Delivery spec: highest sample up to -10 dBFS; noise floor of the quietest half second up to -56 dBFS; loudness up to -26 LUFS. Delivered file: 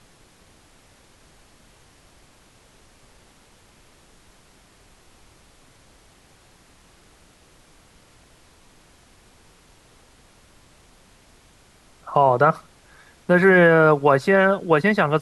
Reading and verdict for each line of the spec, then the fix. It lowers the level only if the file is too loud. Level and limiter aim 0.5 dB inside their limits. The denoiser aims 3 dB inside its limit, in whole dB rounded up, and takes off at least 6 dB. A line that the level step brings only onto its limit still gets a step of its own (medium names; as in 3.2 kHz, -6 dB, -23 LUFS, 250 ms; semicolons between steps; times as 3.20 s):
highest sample -4.5 dBFS: fail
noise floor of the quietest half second -54 dBFS: fail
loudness -17.0 LUFS: fail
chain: trim -9.5 dB